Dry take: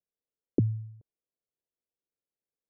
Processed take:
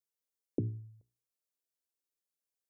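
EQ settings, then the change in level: tone controls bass -3 dB, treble +10 dB; notches 60/120/180/240/300/360/420 Hz; -5.5 dB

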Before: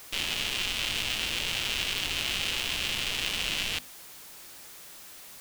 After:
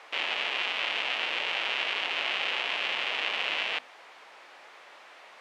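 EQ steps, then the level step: Butterworth band-pass 1100 Hz, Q 0.64; bell 1500 Hz -3.5 dB 0.77 oct; +8.0 dB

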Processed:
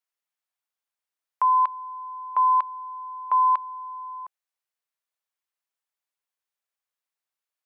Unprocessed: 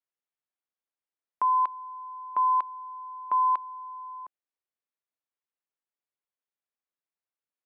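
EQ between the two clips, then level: HPF 630 Hz; +4.5 dB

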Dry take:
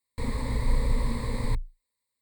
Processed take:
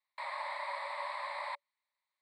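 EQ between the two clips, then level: running mean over 7 samples; Chebyshev high-pass 570 Hz, order 10; air absorption 58 m; +4.5 dB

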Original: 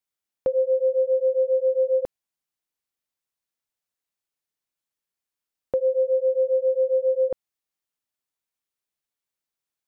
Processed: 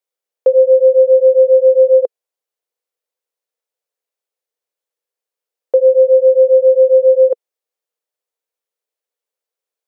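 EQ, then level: resonant high-pass 480 Hz, resonance Q 4.9; 0.0 dB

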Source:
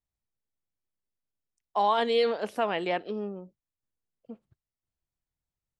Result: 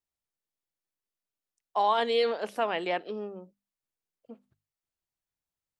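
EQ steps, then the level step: low shelf 180 Hz -10 dB; notches 50/100/150/200/250 Hz; 0.0 dB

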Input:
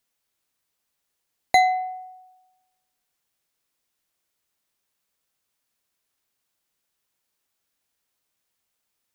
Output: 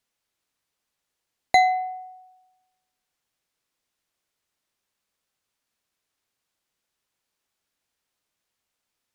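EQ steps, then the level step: high shelf 11000 Hz -10.5 dB; 0.0 dB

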